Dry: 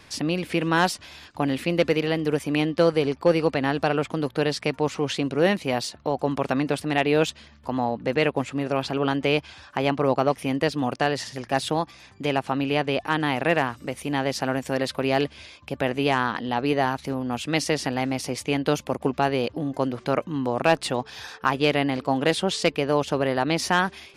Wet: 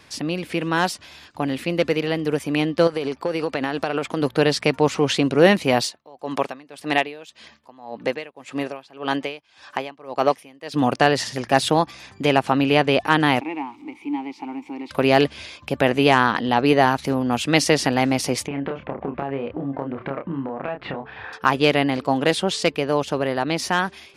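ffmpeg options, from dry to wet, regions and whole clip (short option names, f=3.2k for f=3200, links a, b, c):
-filter_complex "[0:a]asettb=1/sr,asplit=3[a][b][c];[a]atrim=end=2.874[d];[b]atrim=start=2.87:end=4.22,asetpts=PTS-STARTPTS,afade=t=in:d=0.004:c=qsin,afade=t=out:st=1.346:d=0.004:c=qsin,equalizer=f=97:w=0.76:g=-8,acompressor=threshold=-22dB:ratio=12:attack=3.2:release=140:knee=1:detection=peak[e];[c]atrim=start=4.216[f];[d][e]acrossfade=d=0.004:c1=hsin:c2=qsin[g];[g][f]acrossfade=d=0.004:c1=qsin:c2=hsin,asettb=1/sr,asplit=3[h][i][j];[h]atrim=end=5.824[k];[i]atrim=start=5.82:end=10.74,asetpts=PTS-STARTPTS,afade=t=in:d=0.004:c=qsin,afade=t=out:st=4.916:d=0.004:c=qsin,highpass=f=430:p=1,bandreject=f=1.4k:w=14,aeval=exprs='val(0)*pow(10,-25*(0.5-0.5*cos(2*PI*1.8*n/s))/20)':c=same[l];[j]atrim=start=10.736[m];[k][l]acrossfade=d=0.004:c1=hsin:c2=qsin[n];[n][m]acrossfade=d=0.004:c1=qsin:c2=hsin,asettb=1/sr,asplit=3[o][p][q];[o]atrim=end=13.404[r];[p]atrim=start=13.4:end=14.91,asetpts=PTS-STARTPTS,afade=t=in:d=0.004:c=qsin,afade=t=out:st=1.506:d=0.004:c=qsin,aeval=exprs='val(0)+0.5*0.02*sgn(val(0))':c=same,asplit=3[s][t][u];[s]bandpass=f=300:t=q:w=8,volume=0dB[v];[t]bandpass=f=870:t=q:w=8,volume=-6dB[w];[u]bandpass=f=2.24k:t=q:w=8,volume=-9dB[x];[v][w][x]amix=inputs=3:normalize=0,equalizer=f=140:w=0.96:g=-9[y];[q]atrim=start=14.906[z];[r][y]acrossfade=d=0.004:c1=hsin:c2=qsin[aa];[aa][z]acrossfade=d=0.004:c1=qsin:c2=hsin,asettb=1/sr,asplit=3[ab][ac][ad];[ab]atrim=end=18.474[ae];[ac]atrim=start=18.47:end=21.33,asetpts=PTS-STARTPTS,afade=t=in:d=0.004:c=qsin,afade=t=out:st=2.856:d=0.004:c=qsin,lowpass=f=2.3k:w=0.5412,lowpass=f=2.3k:w=1.3066,acompressor=threshold=-29dB:ratio=16:attack=3.2:release=140:knee=1:detection=peak,asplit=2[af][ag];[ag]adelay=29,volume=-5dB[ah];[af][ah]amix=inputs=2:normalize=0,atrim=end_sample=126126[ai];[ad]atrim=start=21.326[aj];[ae][ai]acrossfade=d=0.004:c1=hsin:c2=qsin[ak];[ak][aj]acrossfade=d=0.004:c1=qsin:c2=hsin,lowshelf=f=60:g=-8,dynaudnorm=f=600:g=11:m=11.5dB"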